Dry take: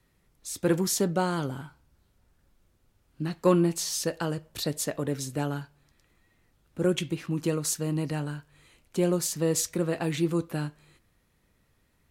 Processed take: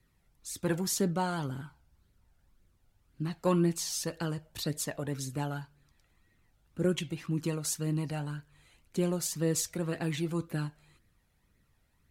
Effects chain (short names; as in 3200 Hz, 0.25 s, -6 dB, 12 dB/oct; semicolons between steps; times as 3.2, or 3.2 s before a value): flange 1.9 Hz, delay 0.4 ms, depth 1.1 ms, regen +36%